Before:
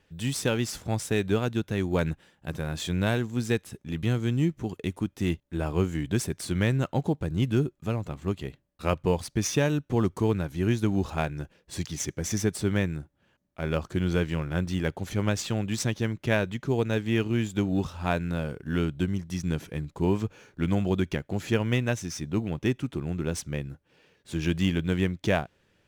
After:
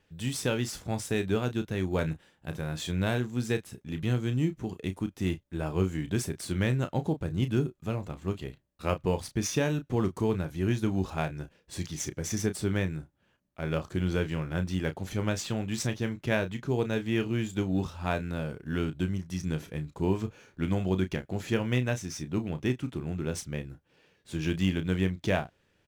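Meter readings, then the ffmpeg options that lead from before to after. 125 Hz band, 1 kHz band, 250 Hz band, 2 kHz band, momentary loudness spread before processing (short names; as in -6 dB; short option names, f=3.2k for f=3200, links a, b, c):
-2.5 dB, -2.5 dB, -2.5 dB, -2.5 dB, 7 LU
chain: -filter_complex "[0:a]asplit=2[a][b];[b]adelay=32,volume=-10dB[c];[a][c]amix=inputs=2:normalize=0,volume=-3dB"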